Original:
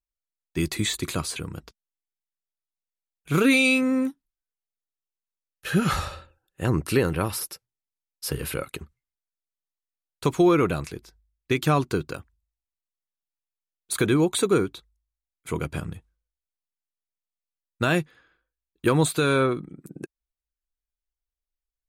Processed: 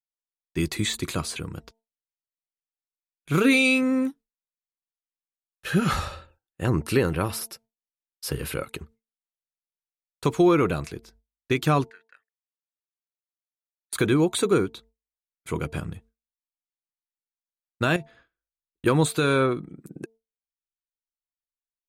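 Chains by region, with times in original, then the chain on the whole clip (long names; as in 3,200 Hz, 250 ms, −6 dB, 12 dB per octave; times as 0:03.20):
0:11.90–0:13.93: resonant band-pass 1,800 Hz, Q 16 + spectral tilt +3 dB per octave
0:17.96–0:18.86: low-pass filter 9,600 Hz + low-shelf EQ 140 Hz +6 dB + downward compressor, threshold −30 dBFS
whole clip: hum removal 224.7 Hz, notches 4; noise gate with hold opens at −46 dBFS; high-shelf EQ 8,400 Hz −3.5 dB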